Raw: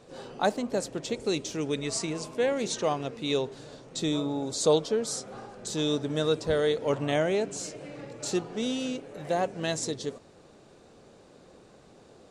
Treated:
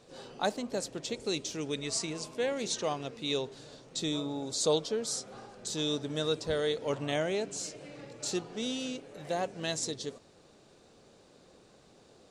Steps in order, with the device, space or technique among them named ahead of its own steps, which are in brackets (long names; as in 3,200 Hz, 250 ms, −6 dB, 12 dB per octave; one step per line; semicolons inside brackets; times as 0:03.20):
presence and air boost (parametric band 4,400 Hz +5 dB 1.7 octaves; high-shelf EQ 9,800 Hz +4.5 dB)
level −5.5 dB